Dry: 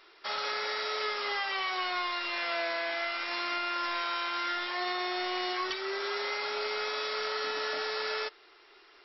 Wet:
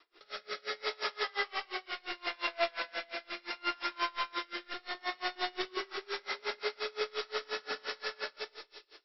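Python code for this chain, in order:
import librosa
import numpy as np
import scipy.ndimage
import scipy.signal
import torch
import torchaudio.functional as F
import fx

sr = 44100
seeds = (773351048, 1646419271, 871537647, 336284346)

y = fx.local_reverse(x, sr, ms=206.0)
y = fx.rotary_switch(y, sr, hz=0.7, then_hz=6.0, switch_at_s=5.35)
y = fx.echo_split(y, sr, split_hz=2800.0, low_ms=115, high_ms=303, feedback_pct=52, wet_db=-8.5)
y = fx.rev_schroeder(y, sr, rt60_s=0.72, comb_ms=31, drr_db=-1.0)
y = y * 10.0 ** (-29 * (0.5 - 0.5 * np.cos(2.0 * np.pi * 5.7 * np.arange(len(y)) / sr)) / 20.0)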